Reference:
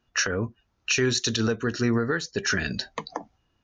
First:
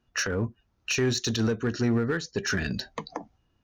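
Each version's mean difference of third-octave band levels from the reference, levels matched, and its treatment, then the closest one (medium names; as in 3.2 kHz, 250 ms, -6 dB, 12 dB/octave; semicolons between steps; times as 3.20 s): 2.5 dB: bass shelf 490 Hz +5.5 dB; in parallel at -10 dB: wavefolder -19 dBFS; on the sum: trim -6 dB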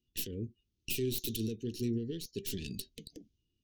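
11.0 dB: tracing distortion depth 0.21 ms; Chebyshev band-stop 390–2900 Hz, order 3; trim -9 dB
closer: first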